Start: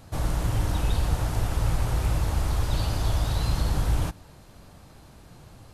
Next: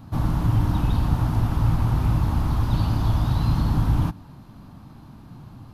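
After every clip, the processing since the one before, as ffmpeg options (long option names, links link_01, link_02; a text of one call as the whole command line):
ffmpeg -i in.wav -af "equalizer=frequency=125:width_type=o:width=1:gain=7,equalizer=frequency=250:width_type=o:width=1:gain=11,equalizer=frequency=500:width_type=o:width=1:gain=-8,equalizer=frequency=1000:width_type=o:width=1:gain=7,equalizer=frequency=2000:width_type=o:width=1:gain=-4,equalizer=frequency=8000:width_type=o:width=1:gain=-12" out.wav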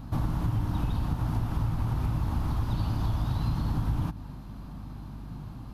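ffmpeg -i in.wav -af "acompressor=threshold=-25dB:ratio=5,aeval=exprs='val(0)+0.00794*(sin(2*PI*50*n/s)+sin(2*PI*2*50*n/s)/2+sin(2*PI*3*50*n/s)/3+sin(2*PI*4*50*n/s)/4+sin(2*PI*5*50*n/s)/5)':channel_layout=same" out.wav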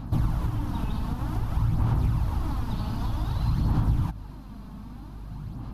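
ffmpeg -i in.wav -af "aphaser=in_gain=1:out_gain=1:delay=4.7:decay=0.43:speed=0.53:type=sinusoidal" out.wav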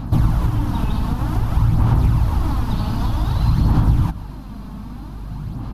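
ffmpeg -i in.wav -af "aecho=1:1:125:0.141,volume=8.5dB" out.wav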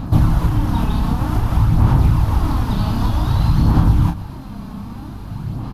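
ffmpeg -i in.wav -filter_complex "[0:a]asplit=2[link_01][link_02];[link_02]adelay=30,volume=-5.5dB[link_03];[link_01][link_03]amix=inputs=2:normalize=0,volume=2dB" out.wav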